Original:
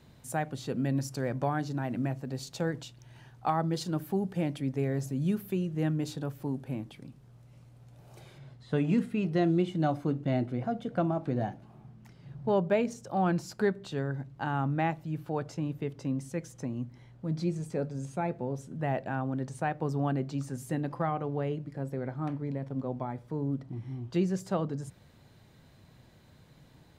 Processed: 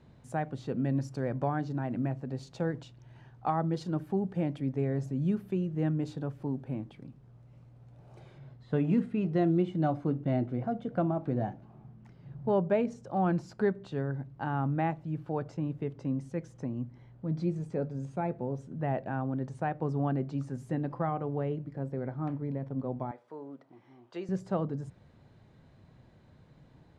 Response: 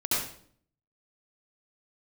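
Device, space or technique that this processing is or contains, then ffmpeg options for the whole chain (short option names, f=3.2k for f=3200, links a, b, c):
through cloth: -filter_complex "[0:a]lowpass=8.7k,highshelf=f=2.6k:g=-12.5,asettb=1/sr,asplit=3[a][b][c];[a]atrim=end=23.114[d];[b]atrim=start=23.11:end=24.29,asetpts=PTS-STARTPTS,afade=t=in:d=0.004:c=qsin,afade=t=out:st=1.176:d=0.004:c=qsin,highpass=560[e];[c]atrim=start=24.286[f];[d][e]acrossfade=d=0.004:c1=hsin:c2=qsin[g];[g][f]acrossfade=d=0.004:c1=qsin:c2=hsin"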